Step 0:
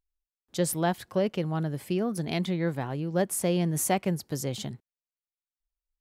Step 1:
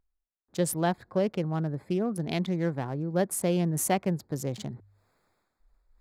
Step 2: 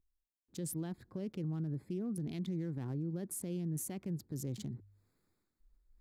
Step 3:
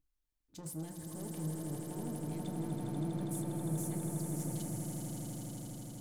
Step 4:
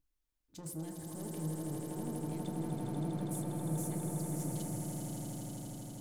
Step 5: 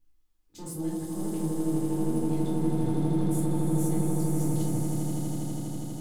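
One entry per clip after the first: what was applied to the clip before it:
local Wiener filter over 15 samples; hum notches 50/100 Hz; reverse; upward compressor, threshold -43 dBFS; reverse
FFT filter 330 Hz 0 dB, 640 Hz -14 dB, 12 kHz -1 dB; peak limiter -29 dBFS, peak gain reduction 11.5 dB; trim -2.5 dB
saturation -38.5 dBFS, distortion -13 dB; echo with a slow build-up 81 ms, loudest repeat 8, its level -7 dB; FDN reverb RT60 0.42 s, low-frequency decay 0.75×, high-frequency decay 0.45×, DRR 3.5 dB; trim -1.5 dB
repeats whose band climbs or falls 104 ms, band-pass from 420 Hz, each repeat 0.7 oct, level -3 dB
simulated room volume 400 m³, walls furnished, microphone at 4 m

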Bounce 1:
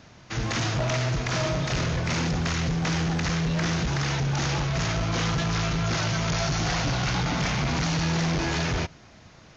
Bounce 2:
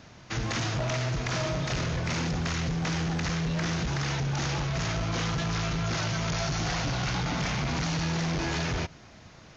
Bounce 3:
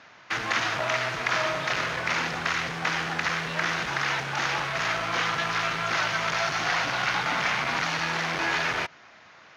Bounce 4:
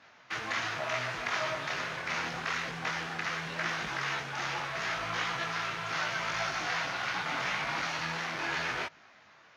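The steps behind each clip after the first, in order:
compression, threshold -27 dBFS, peak gain reduction 4 dB
in parallel at -5 dB: word length cut 6-bit, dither none; on the sum: band-pass filter 1.6 kHz, Q 0.93; trim +6 dB
detune thickener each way 27 cents; trim -3 dB

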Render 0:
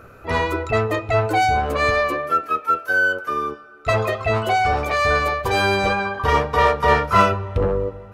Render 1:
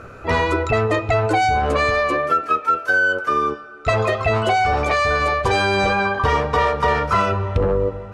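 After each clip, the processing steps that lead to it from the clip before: low-pass 9.2 kHz 24 dB/octave; in parallel at -0.5 dB: peak limiter -13 dBFS, peak gain reduction 11 dB; on the sum: compression, threshold -14 dBFS, peak gain reduction 7.5 dB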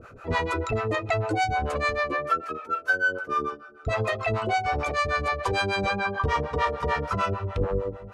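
harmonic tremolo 6.7 Hz, depth 100%, crossover 540 Hz; trim -3 dB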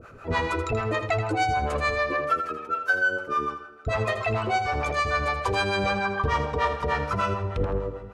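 feedback delay 81 ms, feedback 35%, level -9 dB

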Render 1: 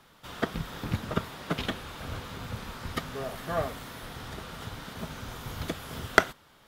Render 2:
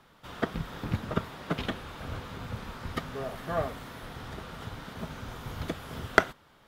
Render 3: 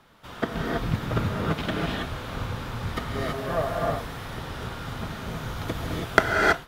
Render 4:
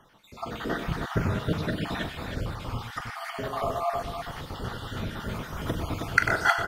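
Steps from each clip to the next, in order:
treble shelf 3.4 kHz -7 dB
gated-style reverb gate 350 ms rising, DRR -2.5 dB; trim +2 dB
random holes in the spectrogram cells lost 57%; on a send: multi-tap echo 42/96/122/316 ms -10/-9.5/-11/-6 dB

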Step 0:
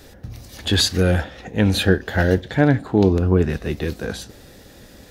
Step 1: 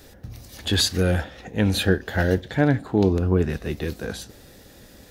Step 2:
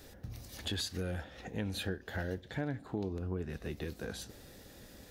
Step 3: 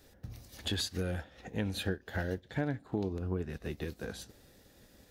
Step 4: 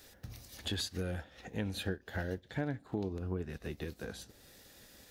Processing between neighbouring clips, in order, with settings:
treble shelf 9.5 kHz +5 dB; trim -3.5 dB
compression 3:1, threshold -31 dBFS, peak gain reduction 13 dB; trim -6 dB
upward expansion 1.5:1, over -55 dBFS; trim +4 dB
tape noise reduction on one side only encoder only; trim -2.5 dB

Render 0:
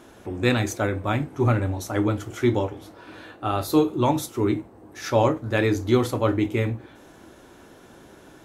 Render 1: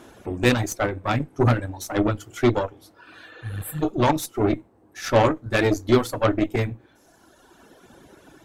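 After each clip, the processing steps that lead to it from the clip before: spectral replace 3.34–3.80 s, 200–7300 Hz before; reverb removal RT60 1.8 s; Chebyshev shaper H 8 -19 dB, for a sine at -6 dBFS; trim +2 dB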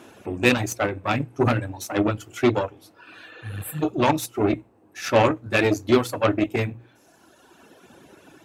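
high-pass 83 Hz; peaking EQ 2.6 kHz +7.5 dB 0.22 oct; hum notches 60/120 Hz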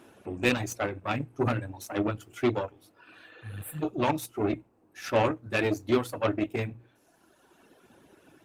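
trim -6.5 dB; Opus 32 kbps 48 kHz

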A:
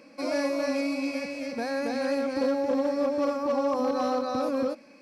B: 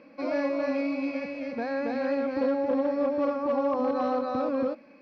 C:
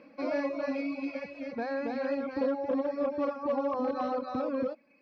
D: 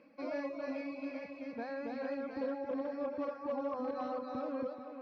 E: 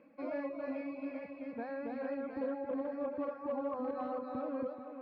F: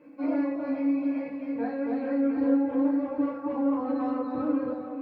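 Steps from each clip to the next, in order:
Bessel low-pass 2.7 kHz, order 4
reverb removal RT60 1.1 s; trim -1.5 dB
tape echo 437 ms, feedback 57%, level -8.5 dB, low-pass 4.9 kHz; trim -7.5 dB
distance through air 340 m; trim +1 dB
FDN reverb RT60 0.48 s, low-frequency decay 1.4×, high-frequency decay 0.8×, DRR -6.5 dB

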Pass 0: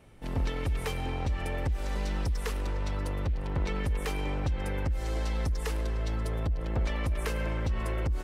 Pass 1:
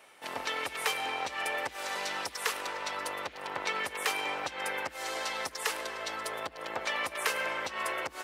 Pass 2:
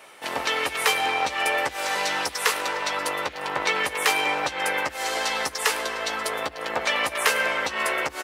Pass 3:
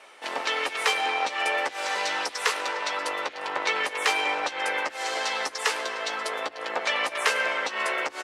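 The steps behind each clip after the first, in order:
high-pass 810 Hz 12 dB/octave; trim +8 dB
doubling 14 ms -7.5 dB; trim +8.5 dB
band-pass 300–7700 Hz; trim -2 dB

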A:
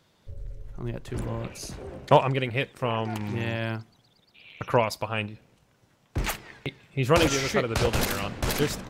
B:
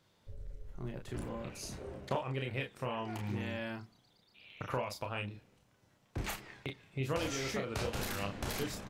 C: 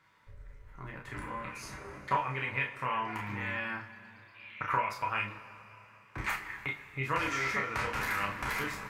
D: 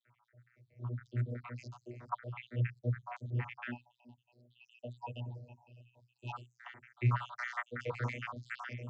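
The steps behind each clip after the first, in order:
compression 3:1, threshold -28 dBFS, peak gain reduction 12 dB; on a send: early reflections 30 ms -5 dB, 40 ms -9.5 dB; on the sum: trim -7.5 dB
high-order bell 1.5 kHz +13.5 dB; two-slope reverb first 0.21 s, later 3.5 s, from -21 dB, DRR 2 dB; trim -4.5 dB
random holes in the spectrogram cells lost 75%; vocoder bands 32, saw 121 Hz; spectral selection erased 3.71–6.33 s, 960–2500 Hz; trim +4 dB

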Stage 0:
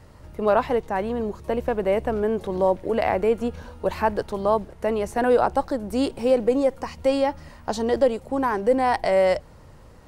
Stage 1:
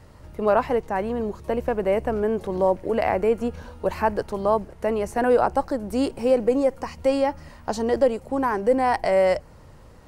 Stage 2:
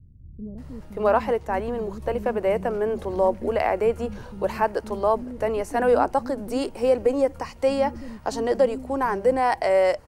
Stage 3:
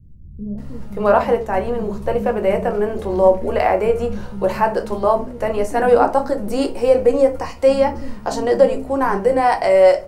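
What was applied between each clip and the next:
dynamic bell 3.6 kHz, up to -8 dB, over -56 dBFS, Q 4.2
bands offset in time lows, highs 580 ms, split 230 Hz
simulated room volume 150 m³, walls furnished, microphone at 0.91 m; trim +4 dB

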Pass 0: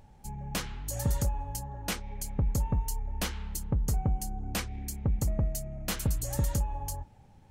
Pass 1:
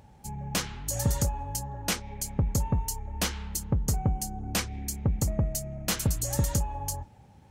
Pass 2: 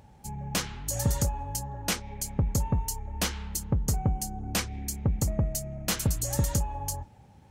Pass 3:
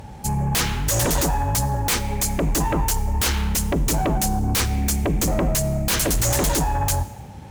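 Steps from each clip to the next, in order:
high-pass 58 Hz; dynamic bell 6.1 kHz, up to +4 dB, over -52 dBFS, Q 1.2; trim +3.5 dB
no audible change
sine folder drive 15 dB, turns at -13.5 dBFS; reverberation RT60 0.90 s, pre-delay 35 ms, DRR 15.5 dB; trim -3 dB

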